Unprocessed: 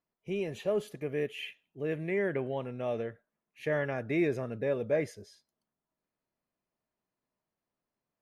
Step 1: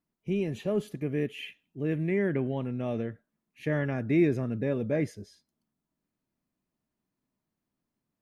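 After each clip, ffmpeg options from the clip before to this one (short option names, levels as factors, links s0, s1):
-af "lowshelf=f=370:t=q:w=1.5:g=7"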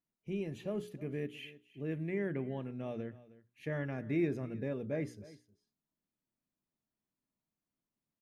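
-af "bandreject=f=60:t=h:w=6,bandreject=f=120:t=h:w=6,bandreject=f=180:t=h:w=6,bandreject=f=240:t=h:w=6,bandreject=f=300:t=h:w=6,bandreject=f=360:t=h:w=6,bandreject=f=420:t=h:w=6,aecho=1:1:312:0.112,volume=0.398"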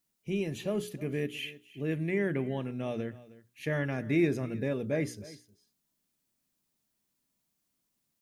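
-af "highshelf=f=3000:g=10,volume=1.88"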